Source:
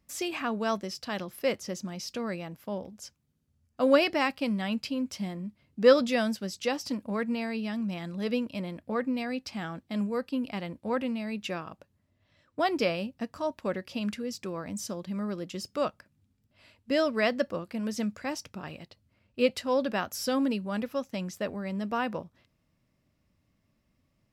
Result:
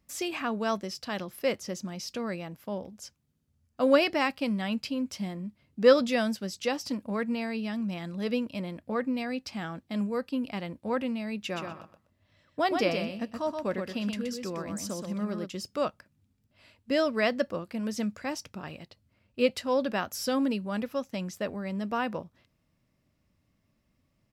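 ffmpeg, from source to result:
-filter_complex "[0:a]asplit=3[a][b][c];[a]afade=t=out:st=11.53:d=0.02[d];[b]aecho=1:1:124|248|372:0.531|0.0956|0.0172,afade=t=in:st=11.53:d=0.02,afade=t=out:st=15.45:d=0.02[e];[c]afade=t=in:st=15.45:d=0.02[f];[d][e][f]amix=inputs=3:normalize=0"

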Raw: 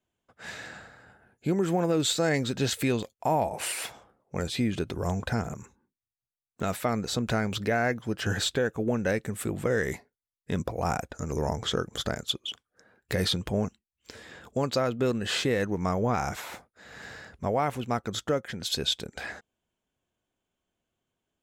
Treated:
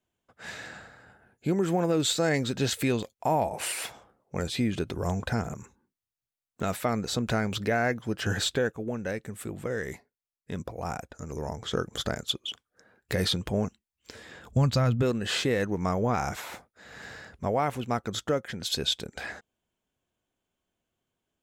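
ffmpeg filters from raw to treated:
-filter_complex "[0:a]asplit=3[a][b][c];[a]afade=t=out:st=14.48:d=0.02[d];[b]asubboost=boost=9.5:cutoff=120,afade=t=in:st=14.48:d=0.02,afade=t=out:st=15.01:d=0.02[e];[c]afade=t=in:st=15.01:d=0.02[f];[d][e][f]amix=inputs=3:normalize=0,asplit=3[g][h][i];[g]atrim=end=8.722[j];[h]atrim=start=8.718:end=11.732,asetpts=PTS-STARTPTS,volume=-5.5dB[k];[i]atrim=start=11.728[l];[j][k]acrossfade=d=0.004:c1=hsin:c2=hsin[m];[m][l]acrossfade=d=0.004:c1=hsin:c2=hsin"

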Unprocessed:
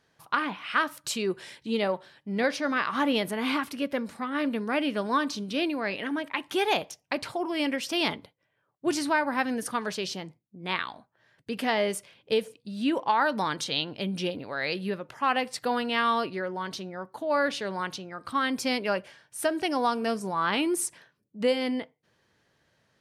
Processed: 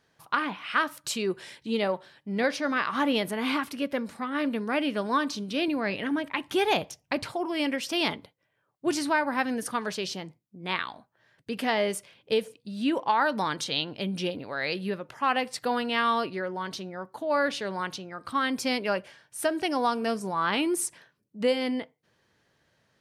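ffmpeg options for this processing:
-filter_complex "[0:a]asettb=1/sr,asplit=3[a][b][c];[a]atrim=end=5.684[d];[b]atrim=start=5.68:end=7.26,asetpts=PTS-STARTPTS,afade=t=in:d=0.004:c=qsin,afade=t=out:st=1.576:d=0.004:c=qsin,lowshelf=f=160:g=12[e];[c]atrim=start=7.256[f];[d][e]acrossfade=d=0.004:c1=hsin:c2=qsin[g];[g][f]acrossfade=d=0.004:c1=qsin:c2=hsin"

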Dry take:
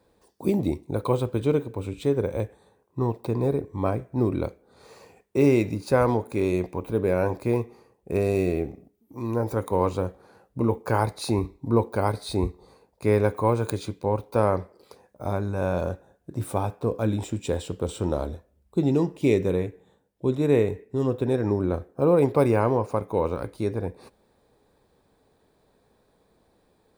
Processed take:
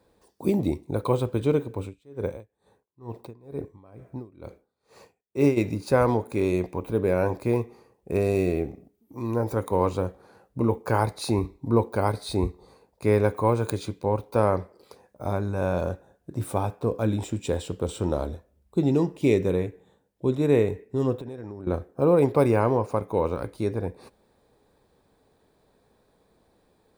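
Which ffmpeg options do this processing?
-filter_complex "[0:a]asplit=3[a][b][c];[a]afade=t=out:st=1.83:d=0.02[d];[b]aeval=exprs='val(0)*pow(10,-29*(0.5-0.5*cos(2*PI*2.2*n/s))/20)':c=same,afade=t=in:st=1.83:d=0.02,afade=t=out:st=5.56:d=0.02[e];[c]afade=t=in:st=5.56:d=0.02[f];[d][e][f]amix=inputs=3:normalize=0,asettb=1/sr,asplit=3[g][h][i];[g]atrim=end=21.164[j];[h]atrim=start=21.16:end=21.67,asetpts=PTS-STARTPTS,afade=t=in:d=0.004:c=qsin,afade=t=out:st=0.506:d=0.004:c=qsin,acompressor=threshold=-33dB:ratio=12:attack=3.2:release=140:knee=1:detection=peak[k];[i]atrim=start=21.666[l];[j][k]acrossfade=d=0.004:c1=hsin:c2=qsin[m];[m][l]acrossfade=d=0.004:c1=qsin:c2=hsin"

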